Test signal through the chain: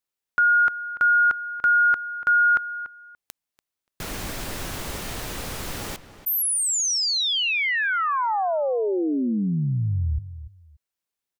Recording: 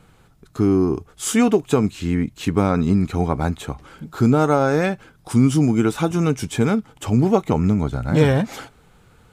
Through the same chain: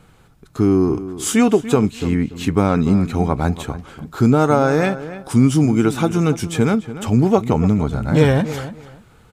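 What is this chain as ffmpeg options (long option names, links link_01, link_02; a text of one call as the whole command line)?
ffmpeg -i in.wav -filter_complex "[0:a]asplit=2[link_01][link_02];[link_02]adelay=289,lowpass=frequency=3200:poles=1,volume=-13.5dB,asplit=2[link_03][link_04];[link_04]adelay=289,lowpass=frequency=3200:poles=1,volume=0.21[link_05];[link_01][link_03][link_05]amix=inputs=3:normalize=0,volume=2dB" out.wav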